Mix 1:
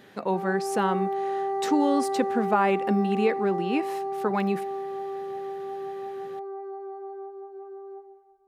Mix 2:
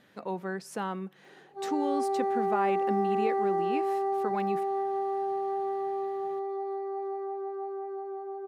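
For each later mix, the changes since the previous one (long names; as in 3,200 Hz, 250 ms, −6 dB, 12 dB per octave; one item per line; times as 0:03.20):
speech −8.0 dB
background: entry +1.25 s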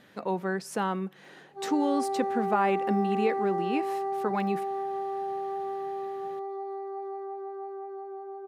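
speech +4.5 dB
background: send −8.5 dB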